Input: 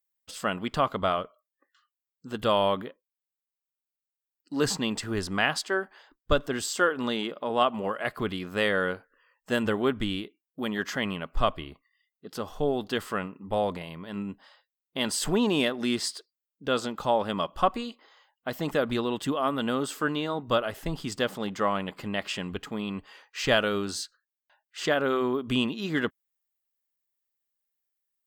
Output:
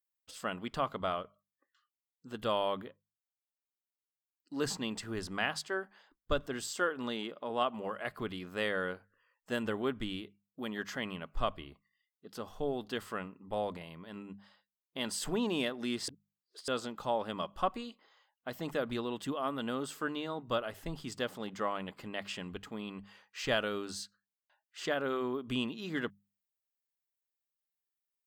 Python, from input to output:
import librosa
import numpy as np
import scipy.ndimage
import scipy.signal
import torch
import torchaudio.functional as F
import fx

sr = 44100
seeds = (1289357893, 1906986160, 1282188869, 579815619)

y = fx.edit(x, sr, fx.reverse_span(start_s=16.08, length_s=0.6), tone=tone)
y = fx.hum_notches(y, sr, base_hz=50, count=4)
y = y * librosa.db_to_amplitude(-8.0)